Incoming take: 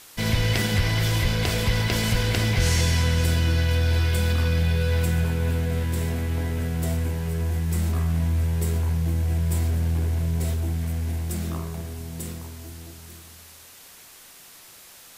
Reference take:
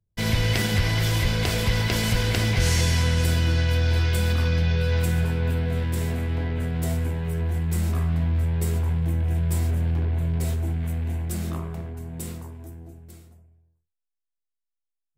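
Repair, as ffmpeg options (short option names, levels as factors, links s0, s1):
-af "afwtdn=0.005"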